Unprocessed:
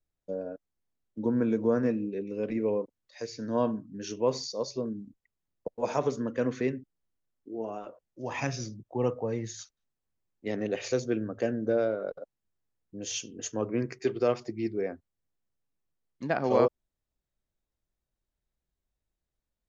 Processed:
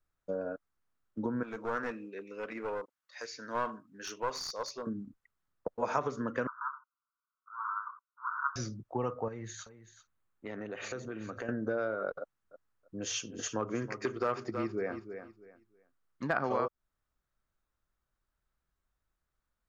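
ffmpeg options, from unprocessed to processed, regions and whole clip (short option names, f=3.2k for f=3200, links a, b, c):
-filter_complex "[0:a]asettb=1/sr,asplit=3[a][b][c];[a]atrim=end=1.434[d];[b]atrim=start=1.43:end=4.87,asetpts=PTS-STARTPTS,afade=t=in:d=0.004:c=qsin,afade=t=out:st=3.436:d=0.004:c=qsin,highpass=f=1.1k:p=1,aeval=exprs='clip(val(0),-1,0.0168)':c=same[e];[c]atrim=start=4.866[f];[d][e]acrossfade=d=0.004:c1=hsin:c2=qsin[g];[g][f]acrossfade=d=0.004:c1=qsin:c2=hsin,asettb=1/sr,asplit=3[h][i][j];[h]atrim=end=6.474[k];[i]atrim=start=6.47:end=8.56,asetpts=PTS-STARTPTS,afade=t=in:d=0.004:c=qsin,afade=t=out:st=2.086:d=0.004:c=qsin,aeval=exprs='abs(val(0))':c=same,asuperpass=centerf=1200:order=12:qfactor=2.1[l];[j]atrim=start=8.556[m];[k][l]acrossfade=d=0.004:c1=hsin:c2=qsin[n];[n][m]acrossfade=d=0.004:c1=qsin:c2=hsin,asettb=1/sr,asplit=3[o][p][q];[o]atrim=end=9.284[r];[p]atrim=start=9.28:end=11.49,asetpts=PTS-STARTPTS,afade=t=in:d=0.004:c=qsin,afade=t=out:st=2.206:d=0.004:c=qsin,equalizer=f=5.2k:w=5.5:g=-12.5,acompressor=threshold=-39dB:ratio=4:attack=3.2:release=140:knee=1:detection=peak,aecho=1:1:383:0.2,atrim=end_sample=97461[s];[q]atrim=start=11.486[t];[r][s]acrossfade=d=0.004:c1=hsin:c2=qsin[u];[u][t]acrossfade=d=0.004:c1=qsin:c2=hsin,asettb=1/sr,asplit=3[v][w][x];[v]atrim=end=12.194[y];[w]atrim=start=12.19:end=16.35,asetpts=PTS-STARTPTS,afade=t=in:d=0.004:c=qsin,afade=t=out:st=4.156:d=0.004:c=qsin,asoftclip=type=hard:threshold=-19dB,aecho=1:1:321|642|963:0.224|0.0537|0.0129,atrim=end_sample=183456[z];[x]atrim=start=16.346[aa];[y][z]acrossfade=d=0.004:c1=hsin:c2=qsin[ab];[ab][aa]acrossfade=d=0.004:c1=qsin:c2=hsin,lowshelf=f=150:g=3.5,acompressor=threshold=-30dB:ratio=6,equalizer=f=1.3k:w=1.4:g=14,volume=-1.5dB"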